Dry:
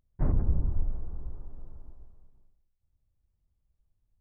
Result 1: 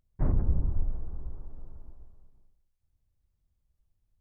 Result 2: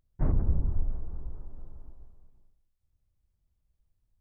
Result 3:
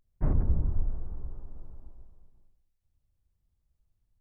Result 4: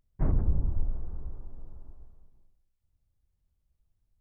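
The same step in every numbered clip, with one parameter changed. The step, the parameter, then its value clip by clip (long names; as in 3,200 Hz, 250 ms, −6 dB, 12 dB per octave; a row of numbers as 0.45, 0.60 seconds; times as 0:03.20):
pitch vibrato, speed: 16, 4.5, 0.32, 1.1 Hertz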